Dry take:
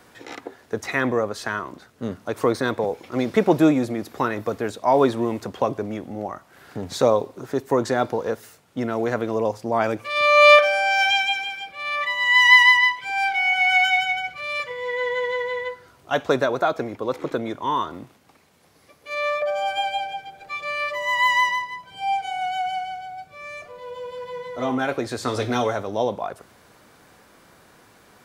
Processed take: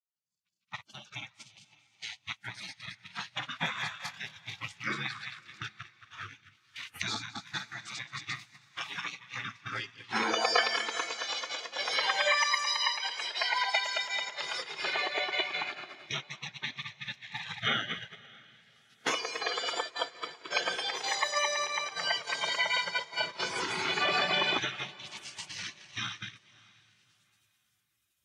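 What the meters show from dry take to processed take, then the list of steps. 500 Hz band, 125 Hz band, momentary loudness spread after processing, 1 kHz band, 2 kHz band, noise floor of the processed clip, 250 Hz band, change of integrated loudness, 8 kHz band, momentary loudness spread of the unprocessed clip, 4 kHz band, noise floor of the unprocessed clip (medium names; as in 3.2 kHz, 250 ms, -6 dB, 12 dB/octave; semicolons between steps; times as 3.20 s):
-17.5 dB, -14.0 dB, 16 LU, -12.5 dB, -11.5 dB, -75 dBFS, -20.5 dB, -11.0 dB, +0.5 dB, 17 LU, -4.0 dB, -54 dBFS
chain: backward echo that repeats 110 ms, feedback 70%, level -4 dB; recorder AGC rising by 20 dB/s; gate -15 dBFS, range -19 dB; frequency weighting A; spectral gate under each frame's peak -25 dB weak; treble shelf 7.2 kHz -10 dB; on a send: echo that smears into a reverb 604 ms, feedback 48%, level -15.5 dB; on the sum: spectral contrast expander 1.5:1; trim +6 dB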